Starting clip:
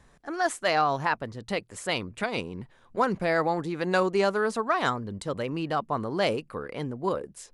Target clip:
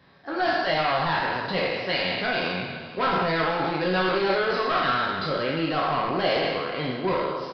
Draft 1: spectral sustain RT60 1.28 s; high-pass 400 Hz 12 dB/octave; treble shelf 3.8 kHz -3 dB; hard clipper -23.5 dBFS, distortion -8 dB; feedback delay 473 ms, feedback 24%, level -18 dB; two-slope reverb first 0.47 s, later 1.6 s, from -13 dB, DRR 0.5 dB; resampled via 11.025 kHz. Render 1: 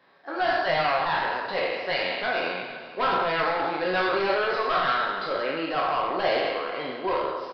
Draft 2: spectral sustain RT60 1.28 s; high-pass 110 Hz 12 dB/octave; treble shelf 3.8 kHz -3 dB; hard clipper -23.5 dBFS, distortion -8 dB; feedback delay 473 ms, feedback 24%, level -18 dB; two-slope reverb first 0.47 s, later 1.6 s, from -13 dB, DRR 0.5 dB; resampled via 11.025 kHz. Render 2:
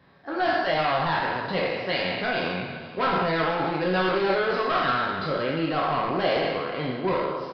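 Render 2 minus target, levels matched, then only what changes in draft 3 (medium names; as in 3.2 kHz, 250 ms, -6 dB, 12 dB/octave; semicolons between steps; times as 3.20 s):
8 kHz band -3.5 dB
change: treble shelf 3.8 kHz +6.5 dB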